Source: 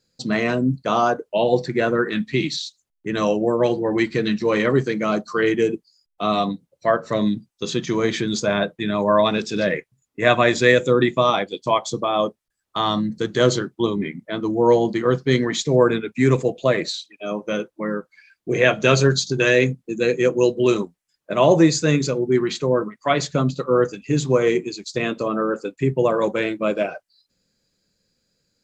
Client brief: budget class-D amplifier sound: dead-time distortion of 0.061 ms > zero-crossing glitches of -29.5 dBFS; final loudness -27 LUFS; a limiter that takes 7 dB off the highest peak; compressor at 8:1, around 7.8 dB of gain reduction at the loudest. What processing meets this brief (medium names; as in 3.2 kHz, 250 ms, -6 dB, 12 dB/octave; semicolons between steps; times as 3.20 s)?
compression 8:1, threshold -18 dBFS; peak limiter -15 dBFS; dead-time distortion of 0.061 ms; zero-crossing glitches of -29.5 dBFS; trim -0.5 dB